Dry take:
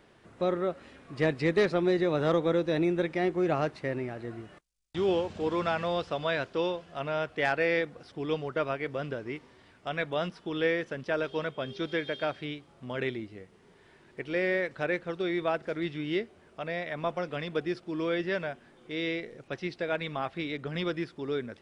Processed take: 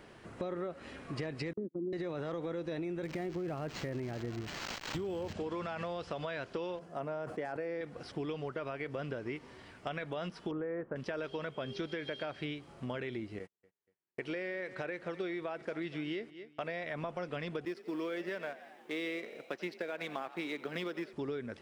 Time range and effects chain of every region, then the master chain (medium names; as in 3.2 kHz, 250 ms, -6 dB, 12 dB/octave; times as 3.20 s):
1.53–1.93 s: Butterworth band-pass 260 Hz, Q 1.9 + gate -36 dBFS, range -34 dB
3.03–5.33 s: zero-crossing glitches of -32.5 dBFS + bass shelf 290 Hz +7.5 dB + decimation joined by straight lines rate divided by 4×
6.79–7.81 s: high-pass 160 Hz + peaking EQ 3 kHz -15 dB 1.9 oct + decay stretcher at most 120 dB/s
10.51–10.96 s: low-pass 1.4 kHz 24 dB/octave + tape noise reduction on one side only decoder only
13.39–16.84 s: gate -52 dBFS, range -45 dB + bass shelf 110 Hz -11.5 dB + feedback delay 238 ms, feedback 34%, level -22.5 dB
17.65–21.13 s: companding laws mixed up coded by A + high-pass 200 Hz 24 dB/octave + frequency-shifting echo 88 ms, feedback 60%, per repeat +45 Hz, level -20 dB
whole clip: band-stop 3.6 kHz, Q 18; peak limiter -24.5 dBFS; compression 6:1, threshold -40 dBFS; trim +4.5 dB